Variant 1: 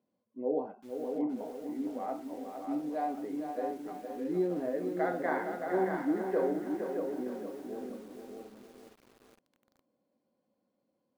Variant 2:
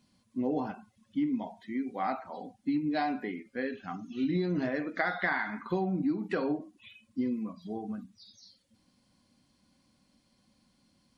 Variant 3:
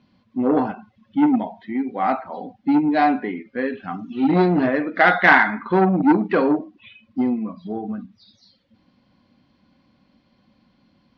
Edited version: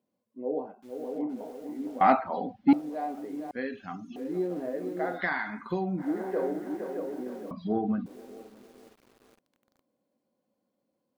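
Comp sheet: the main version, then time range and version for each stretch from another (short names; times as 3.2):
1
2.01–2.73 from 3
3.51–4.16 from 2
5.17–6.02 from 2, crossfade 0.10 s
7.51–8.06 from 3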